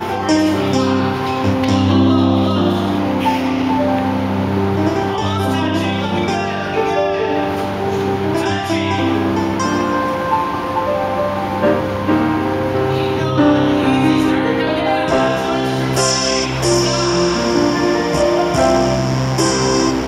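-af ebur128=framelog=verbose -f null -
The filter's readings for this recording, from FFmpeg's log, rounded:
Integrated loudness:
  I:         -16.1 LUFS
  Threshold: -26.1 LUFS
Loudness range:
  LRA:         2.7 LU
  Threshold: -36.3 LUFS
  LRA low:   -17.7 LUFS
  LRA high:  -15.0 LUFS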